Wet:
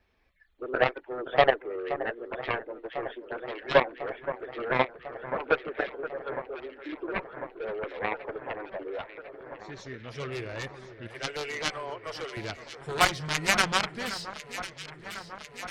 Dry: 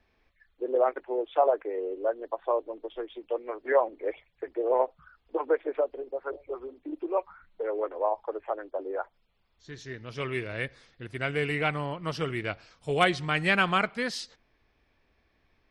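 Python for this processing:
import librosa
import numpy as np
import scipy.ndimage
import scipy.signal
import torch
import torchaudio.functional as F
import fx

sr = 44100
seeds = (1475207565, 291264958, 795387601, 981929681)

y = fx.spec_quant(x, sr, step_db=15)
y = fx.steep_highpass(y, sr, hz=410.0, slope=36, at=(11.08, 12.37))
y = fx.cheby_harmonics(y, sr, harmonics=(2, 7), levels_db=(-19, -12), full_scale_db=-9.5)
y = fx.echo_alternate(y, sr, ms=524, hz=1800.0, feedback_pct=84, wet_db=-12.0)
y = y * librosa.db_to_amplitude(2.0)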